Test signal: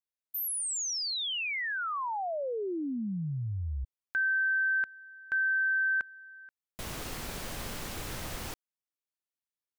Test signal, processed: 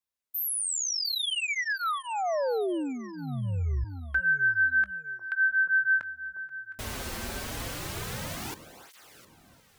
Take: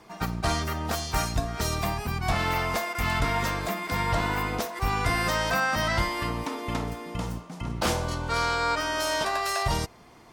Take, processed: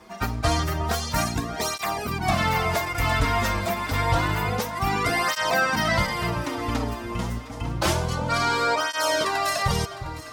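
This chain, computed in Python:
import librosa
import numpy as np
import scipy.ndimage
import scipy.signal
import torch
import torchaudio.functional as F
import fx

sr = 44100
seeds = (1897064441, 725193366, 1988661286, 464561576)

y = fx.echo_alternate(x, sr, ms=355, hz=1100.0, feedback_pct=61, wet_db=-11.0)
y = fx.flanger_cancel(y, sr, hz=0.28, depth_ms=7.1)
y = y * librosa.db_to_amplitude(6.0)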